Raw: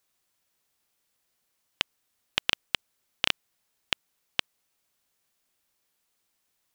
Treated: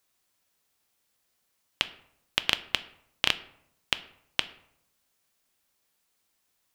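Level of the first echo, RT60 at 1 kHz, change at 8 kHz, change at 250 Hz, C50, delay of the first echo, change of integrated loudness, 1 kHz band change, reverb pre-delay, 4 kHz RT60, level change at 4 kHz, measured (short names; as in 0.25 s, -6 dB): none, 0.70 s, +1.0 dB, +1.5 dB, 17.0 dB, none, +1.0 dB, +1.5 dB, 3 ms, 0.45 s, +1.0 dB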